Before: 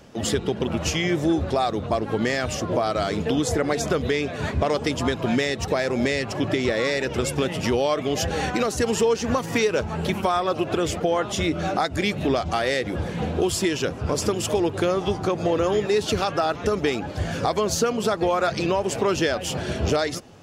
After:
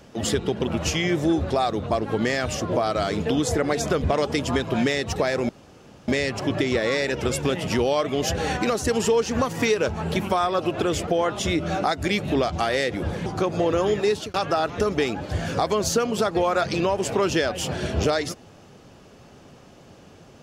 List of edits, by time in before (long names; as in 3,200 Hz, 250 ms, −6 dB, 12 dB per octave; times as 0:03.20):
0:04.04–0:04.56: remove
0:06.01: splice in room tone 0.59 s
0:13.19–0:15.12: remove
0:15.95–0:16.20: fade out